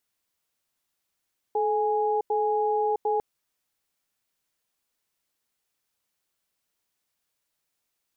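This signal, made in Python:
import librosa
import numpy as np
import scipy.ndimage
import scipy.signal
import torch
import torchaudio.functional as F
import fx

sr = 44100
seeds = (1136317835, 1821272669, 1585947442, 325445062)

y = fx.cadence(sr, length_s=1.65, low_hz=431.0, high_hz=829.0, on_s=0.66, off_s=0.09, level_db=-24.5)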